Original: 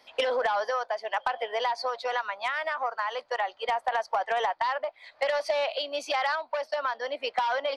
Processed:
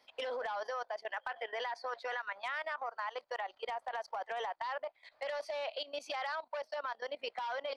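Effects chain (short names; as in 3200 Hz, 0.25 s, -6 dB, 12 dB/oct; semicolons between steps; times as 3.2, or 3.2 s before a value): 1.06–2.44 bell 1700 Hz +8.5 dB 0.65 oct; level quantiser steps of 16 dB; gain -5.5 dB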